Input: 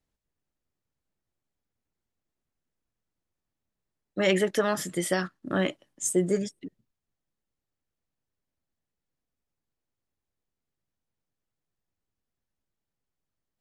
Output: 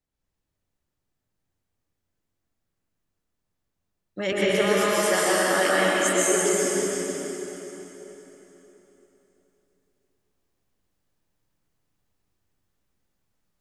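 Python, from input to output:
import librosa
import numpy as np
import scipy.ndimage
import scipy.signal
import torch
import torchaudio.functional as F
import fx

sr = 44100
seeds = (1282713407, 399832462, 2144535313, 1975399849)

y = fx.highpass(x, sr, hz=460.0, slope=12, at=(4.32, 6.56))
y = fx.rider(y, sr, range_db=10, speed_s=0.5)
y = y + 10.0 ** (-7.5 / 20.0) * np.pad(y, (int(330 * sr / 1000.0), 0))[:len(y)]
y = fx.rev_plate(y, sr, seeds[0], rt60_s=3.8, hf_ratio=0.85, predelay_ms=110, drr_db=-8.0)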